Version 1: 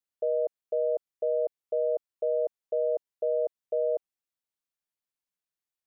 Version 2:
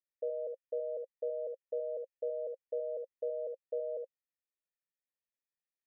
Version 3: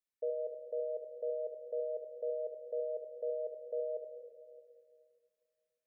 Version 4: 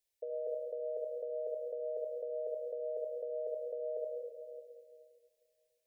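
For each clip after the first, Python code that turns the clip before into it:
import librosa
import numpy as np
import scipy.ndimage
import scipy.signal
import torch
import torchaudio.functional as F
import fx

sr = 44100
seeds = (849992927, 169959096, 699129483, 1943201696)

y1 = fx.formant_cascade(x, sr, vowel='e')
y1 = fx.peak_eq(y1, sr, hz=670.0, db=-11.5, octaves=2.4)
y1 = fx.room_early_taps(y1, sr, ms=(57, 74), db=(-11.0, -8.0))
y1 = y1 * librosa.db_to_amplitude(10.0)
y2 = fx.room_shoebox(y1, sr, seeds[0], volume_m3=3500.0, walls='mixed', distance_m=1.5)
y2 = y2 * librosa.db_to_amplitude(-2.0)
y3 = fx.peak_eq(y2, sr, hz=310.0, db=-3.5, octaves=0.93)
y3 = fx.over_compress(y3, sr, threshold_db=-42.0, ratio=-1.0)
y3 = fx.fixed_phaser(y3, sr, hz=510.0, stages=4)
y3 = y3 * librosa.db_to_amplitude(5.0)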